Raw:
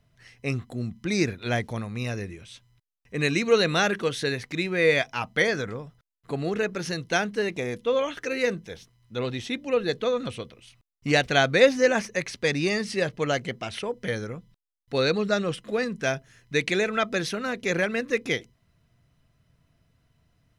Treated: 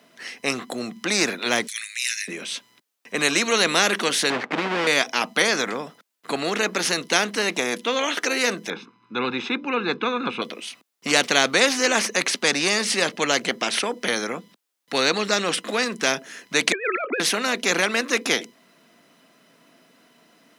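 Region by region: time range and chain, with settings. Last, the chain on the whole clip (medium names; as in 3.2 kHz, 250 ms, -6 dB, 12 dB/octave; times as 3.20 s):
1.67–2.28 s: steep high-pass 1.8 kHz 48 dB/octave + peaking EQ 8.2 kHz +12.5 dB 0.54 oct + upward compressor, threshold -53 dBFS
4.30–4.87 s: square wave that keeps the level + low-pass 1.7 kHz + compression 4:1, threshold -24 dBFS
8.70–10.42 s: low-pass 1.8 kHz + comb 0.8 ms, depth 93%
16.72–17.20 s: formants replaced by sine waves + high-pass 260 Hz 24 dB/octave + compressor with a negative ratio -29 dBFS, ratio -0.5
whole clip: steep high-pass 220 Hz 36 dB/octave; spectrum-flattening compressor 2:1; trim +3 dB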